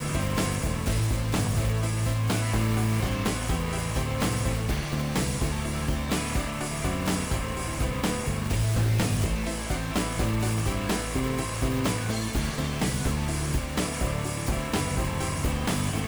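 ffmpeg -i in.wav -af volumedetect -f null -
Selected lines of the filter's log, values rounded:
mean_volume: -26.7 dB
max_volume: -18.3 dB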